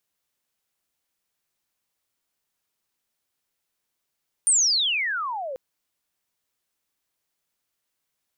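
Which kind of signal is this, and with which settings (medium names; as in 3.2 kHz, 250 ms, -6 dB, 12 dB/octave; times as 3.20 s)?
sweep logarithmic 9.3 kHz -> 500 Hz -15 dBFS -> -29.5 dBFS 1.09 s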